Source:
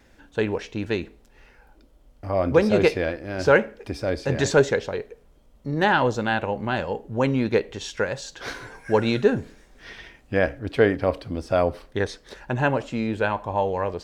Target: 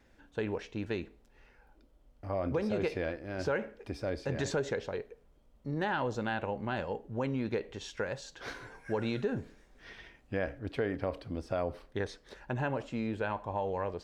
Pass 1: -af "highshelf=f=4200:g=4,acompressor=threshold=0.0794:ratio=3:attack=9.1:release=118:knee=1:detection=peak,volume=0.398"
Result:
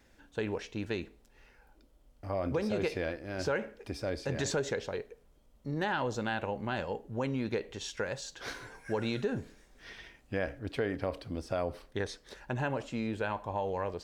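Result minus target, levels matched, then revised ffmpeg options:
8 kHz band +5.5 dB
-af "highshelf=f=4200:g=-4.5,acompressor=threshold=0.0794:ratio=3:attack=9.1:release=118:knee=1:detection=peak,volume=0.398"

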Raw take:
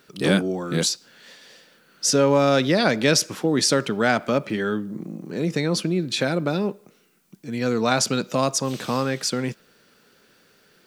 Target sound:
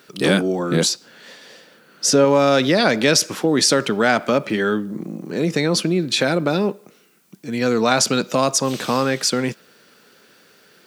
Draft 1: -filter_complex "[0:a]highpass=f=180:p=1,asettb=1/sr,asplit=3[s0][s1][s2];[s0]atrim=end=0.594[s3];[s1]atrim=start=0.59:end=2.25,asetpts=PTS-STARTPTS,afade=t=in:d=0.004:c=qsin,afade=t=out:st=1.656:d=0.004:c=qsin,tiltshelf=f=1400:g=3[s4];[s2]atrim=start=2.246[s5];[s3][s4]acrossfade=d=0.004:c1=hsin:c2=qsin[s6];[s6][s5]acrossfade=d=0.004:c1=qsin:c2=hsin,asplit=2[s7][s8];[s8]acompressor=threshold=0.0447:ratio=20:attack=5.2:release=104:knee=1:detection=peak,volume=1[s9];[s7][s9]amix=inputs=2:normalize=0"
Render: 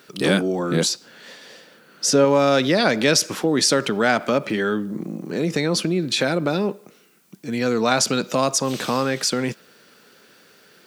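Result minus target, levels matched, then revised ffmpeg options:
compression: peak gain reduction +6.5 dB
-filter_complex "[0:a]highpass=f=180:p=1,asettb=1/sr,asplit=3[s0][s1][s2];[s0]atrim=end=0.594[s3];[s1]atrim=start=0.59:end=2.25,asetpts=PTS-STARTPTS,afade=t=in:d=0.004:c=qsin,afade=t=out:st=1.656:d=0.004:c=qsin,tiltshelf=f=1400:g=3[s4];[s2]atrim=start=2.246[s5];[s3][s4]acrossfade=d=0.004:c1=hsin:c2=qsin[s6];[s6][s5]acrossfade=d=0.004:c1=qsin:c2=hsin,asplit=2[s7][s8];[s8]acompressor=threshold=0.1:ratio=20:attack=5.2:release=104:knee=1:detection=peak,volume=1[s9];[s7][s9]amix=inputs=2:normalize=0"

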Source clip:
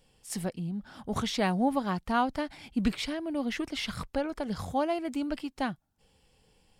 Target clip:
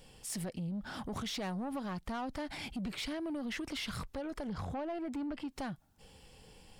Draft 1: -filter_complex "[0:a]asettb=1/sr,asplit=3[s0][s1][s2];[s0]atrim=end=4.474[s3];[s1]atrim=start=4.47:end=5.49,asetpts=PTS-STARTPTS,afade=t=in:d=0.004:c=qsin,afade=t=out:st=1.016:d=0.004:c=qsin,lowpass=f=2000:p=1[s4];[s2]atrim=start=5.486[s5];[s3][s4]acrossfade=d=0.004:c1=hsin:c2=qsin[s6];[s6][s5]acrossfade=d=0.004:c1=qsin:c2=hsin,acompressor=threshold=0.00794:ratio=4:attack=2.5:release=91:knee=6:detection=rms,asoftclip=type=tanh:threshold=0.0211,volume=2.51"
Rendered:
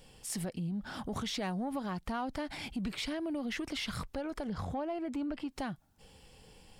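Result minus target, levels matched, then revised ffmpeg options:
saturation: distortion -11 dB
-filter_complex "[0:a]asettb=1/sr,asplit=3[s0][s1][s2];[s0]atrim=end=4.474[s3];[s1]atrim=start=4.47:end=5.49,asetpts=PTS-STARTPTS,afade=t=in:d=0.004:c=qsin,afade=t=out:st=1.016:d=0.004:c=qsin,lowpass=f=2000:p=1[s4];[s2]atrim=start=5.486[s5];[s3][s4]acrossfade=d=0.004:c1=hsin:c2=qsin[s6];[s6][s5]acrossfade=d=0.004:c1=qsin:c2=hsin,acompressor=threshold=0.00794:ratio=4:attack=2.5:release=91:knee=6:detection=rms,asoftclip=type=tanh:threshold=0.00891,volume=2.51"

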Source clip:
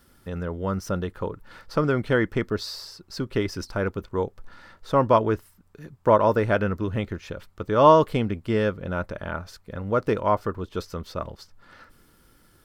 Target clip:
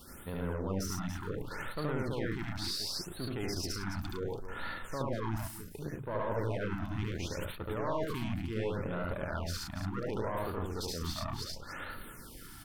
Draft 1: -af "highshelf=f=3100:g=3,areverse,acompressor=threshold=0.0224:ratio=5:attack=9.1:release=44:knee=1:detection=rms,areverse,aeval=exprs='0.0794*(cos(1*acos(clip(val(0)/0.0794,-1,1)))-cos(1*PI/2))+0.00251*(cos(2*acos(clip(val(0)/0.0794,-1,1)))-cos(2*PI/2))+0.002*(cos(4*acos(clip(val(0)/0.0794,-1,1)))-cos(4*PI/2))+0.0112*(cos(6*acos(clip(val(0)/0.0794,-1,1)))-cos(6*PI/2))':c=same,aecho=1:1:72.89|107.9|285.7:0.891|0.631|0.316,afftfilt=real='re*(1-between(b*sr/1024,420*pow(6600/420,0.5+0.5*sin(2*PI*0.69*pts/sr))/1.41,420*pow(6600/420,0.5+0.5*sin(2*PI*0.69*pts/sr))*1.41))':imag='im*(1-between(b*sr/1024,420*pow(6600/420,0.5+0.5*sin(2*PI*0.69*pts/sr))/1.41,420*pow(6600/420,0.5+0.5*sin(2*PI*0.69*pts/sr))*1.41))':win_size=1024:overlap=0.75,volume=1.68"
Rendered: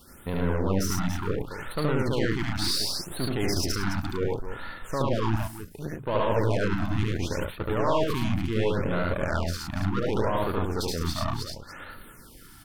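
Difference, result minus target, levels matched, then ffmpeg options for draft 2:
compression: peak gain reduction -9 dB
-af "highshelf=f=3100:g=3,areverse,acompressor=threshold=0.00596:ratio=5:attack=9.1:release=44:knee=1:detection=rms,areverse,aeval=exprs='0.0794*(cos(1*acos(clip(val(0)/0.0794,-1,1)))-cos(1*PI/2))+0.00251*(cos(2*acos(clip(val(0)/0.0794,-1,1)))-cos(2*PI/2))+0.002*(cos(4*acos(clip(val(0)/0.0794,-1,1)))-cos(4*PI/2))+0.0112*(cos(6*acos(clip(val(0)/0.0794,-1,1)))-cos(6*PI/2))':c=same,aecho=1:1:72.89|107.9|285.7:0.891|0.631|0.316,afftfilt=real='re*(1-between(b*sr/1024,420*pow(6600/420,0.5+0.5*sin(2*PI*0.69*pts/sr))/1.41,420*pow(6600/420,0.5+0.5*sin(2*PI*0.69*pts/sr))*1.41))':imag='im*(1-between(b*sr/1024,420*pow(6600/420,0.5+0.5*sin(2*PI*0.69*pts/sr))/1.41,420*pow(6600/420,0.5+0.5*sin(2*PI*0.69*pts/sr))*1.41))':win_size=1024:overlap=0.75,volume=1.68"

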